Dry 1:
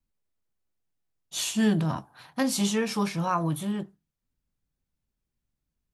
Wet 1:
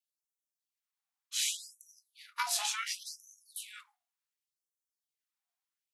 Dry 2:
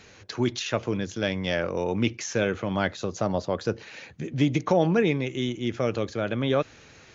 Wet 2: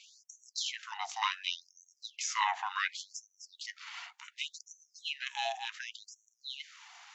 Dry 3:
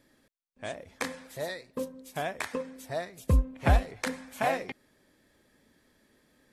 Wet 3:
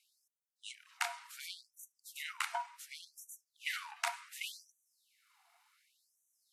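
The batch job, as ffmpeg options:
-af "aeval=exprs='val(0)*sin(2*PI*440*n/s)':c=same,afftfilt=real='re*gte(b*sr/1024,670*pow(5800/670,0.5+0.5*sin(2*PI*0.68*pts/sr)))':imag='im*gte(b*sr/1024,670*pow(5800/670,0.5+0.5*sin(2*PI*0.68*pts/sr)))':win_size=1024:overlap=0.75,volume=1.5dB"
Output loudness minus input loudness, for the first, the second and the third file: -7.5, -10.0, -10.0 LU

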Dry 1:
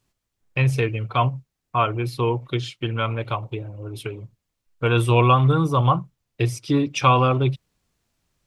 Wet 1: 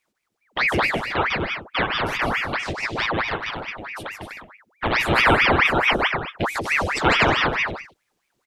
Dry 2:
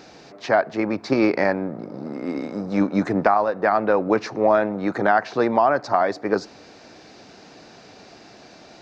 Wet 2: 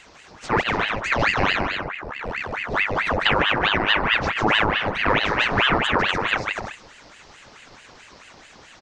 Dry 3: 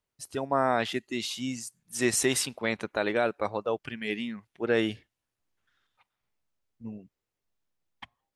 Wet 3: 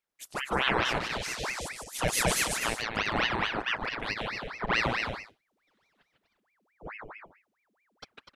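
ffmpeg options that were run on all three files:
-af "aecho=1:1:150|247.5|310.9|352.1|378.8:0.631|0.398|0.251|0.158|0.1,aeval=exprs='val(0)*sin(2*PI*1300*n/s+1300*0.85/4.6*sin(2*PI*4.6*n/s))':c=same"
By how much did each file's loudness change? +0.5, +0.5, 0.0 LU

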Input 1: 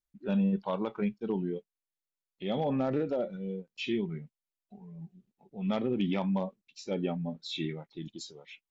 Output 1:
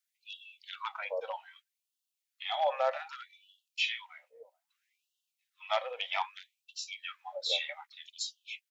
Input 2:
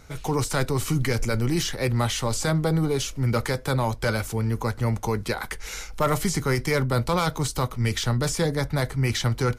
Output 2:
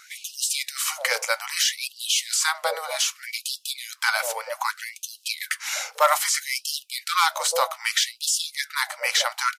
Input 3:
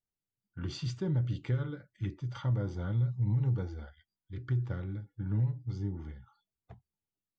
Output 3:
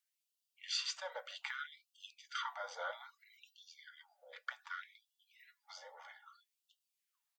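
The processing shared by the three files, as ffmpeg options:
-filter_complex "[0:a]acrossover=split=510[a][b];[a]adelay=440[c];[c][b]amix=inputs=2:normalize=0,afftfilt=real='re*gte(b*sr/1024,460*pow(2700/460,0.5+0.5*sin(2*PI*0.63*pts/sr)))':imag='im*gte(b*sr/1024,460*pow(2700/460,0.5+0.5*sin(2*PI*0.63*pts/sr)))':win_size=1024:overlap=0.75,volume=7.5dB"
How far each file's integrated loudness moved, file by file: -2.5, +1.0, -9.5 LU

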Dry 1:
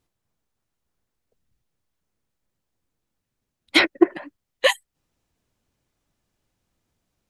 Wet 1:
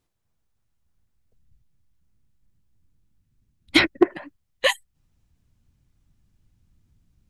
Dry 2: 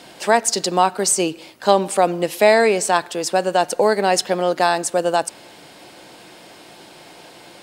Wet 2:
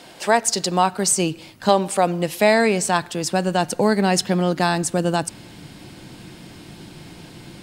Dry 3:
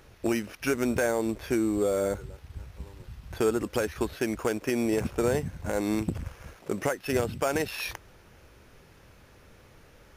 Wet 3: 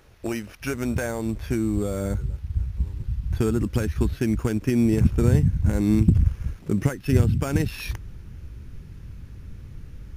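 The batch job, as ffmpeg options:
-af "asubboost=boost=11.5:cutoff=180,volume=-1dB"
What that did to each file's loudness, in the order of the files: -1.5, -1.5, +5.0 LU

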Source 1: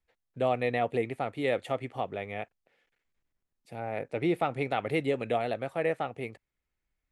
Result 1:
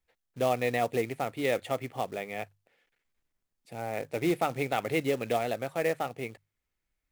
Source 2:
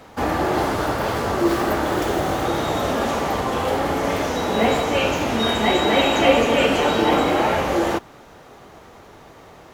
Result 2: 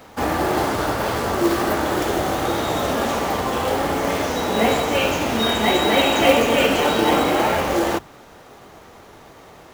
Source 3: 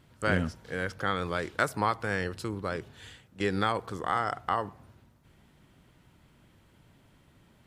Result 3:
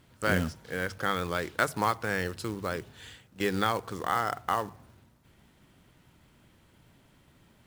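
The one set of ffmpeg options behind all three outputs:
-af "highshelf=f=2.4k:g=2,bandreject=f=50:t=h:w=6,bandreject=f=100:t=h:w=6,bandreject=f=150:t=h:w=6,acrusher=bits=4:mode=log:mix=0:aa=0.000001"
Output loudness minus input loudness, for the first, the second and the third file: +0.5, +0.5, +0.5 LU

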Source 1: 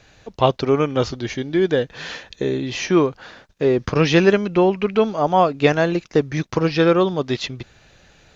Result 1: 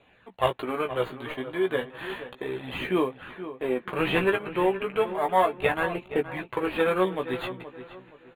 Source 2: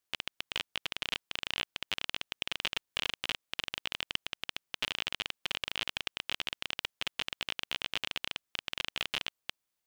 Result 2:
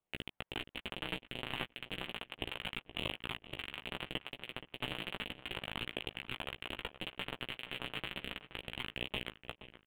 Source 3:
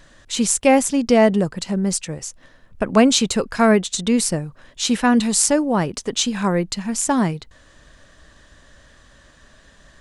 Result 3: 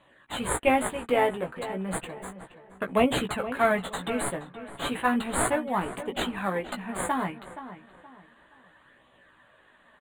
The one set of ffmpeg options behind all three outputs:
-filter_complex "[0:a]highpass=140,tiltshelf=f=630:g=-7.5,asplit=2[a][b];[b]acrusher=samples=16:mix=1:aa=0.000001,volume=-6dB[c];[a][c]amix=inputs=2:normalize=0,flanger=delay=0.3:depth=7.4:regen=-27:speed=0.33:shape=sinusoidal,adynamicsmooth=sensitivity=6:basefreq=6.6k,asuperstop=centerf=5500:order=4:qfactor=0.81,asplit=2[d][e];[e]adelay=16,volume=-5.5dB[f];[d][f]amix=inputs=2:normalize=0,asplit=2[g][h];[h]adelay=473,lowpass=f=2.5k:p=1,volume=-12.5dB,asplit=2[i][j];[j]adelay=473,lowpass=f=2.5k:p=1,volume=0.33,asplit=2[k][l];[l]adelay=473,lowpass=f=2.5k:p=1,volume=0.33[m];[g][i][k][m]amix=inputs=4:normalize=0,volume=-7.5dB"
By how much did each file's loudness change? -8.5, -6.0, -9.5 LU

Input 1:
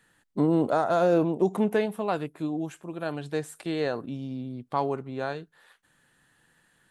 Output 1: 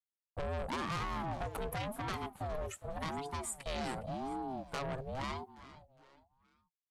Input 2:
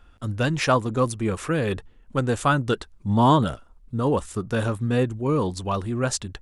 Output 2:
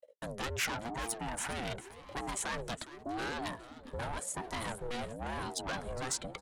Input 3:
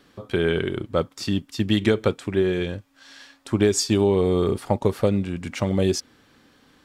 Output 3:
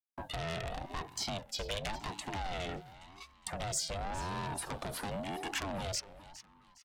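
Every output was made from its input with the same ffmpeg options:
-filter_complex "[0:a]afftdn=nr=14:nf=-41,agate=range=-44dB:threshold=-49dB:ratio=16:detection=peak,lowshelf=f=260:g=2.5,acrossover=split=160[a][b];[a]acompressor=threshold=-40dB:ratio=20[c];[c][b]amix=inputs=2:normalize=0,alimiter=limit=-15dB:level=0:latency=1:release=69,acrossover=split=130|2600[d][e][f];[d]acompressor=threshold=-45dB:ratio=4[g];[e]acompressor=threshold=-28dB:ratio=4[h];[f]acompressor=threshold=-51dB:ratio=4[i];[g][h][i]amix=inputs=3:normalize=0,asoftclip=type=tanh:threshold=-32.5dB,asplit=4[j][k][l][m];[k]adelay=411,afreqshift=66,volume=-16dB[n];[l]adelay=822,afreqshift=132,volume=-25.4dB[o];[m]adelay=1233,afreqshift=198,volume=-34.7dB[p];[j][n][o][p]amix=inputs=4:normalize=0,crystalizer=i=5.5:c=0,aeval=exprs='val(0)*sin(2*PI*410*n/s+410*0.4/0.91*sin(2*PI*0.91*n/s))':c=same"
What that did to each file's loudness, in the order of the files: -11.5, -14.0, -15.0 LU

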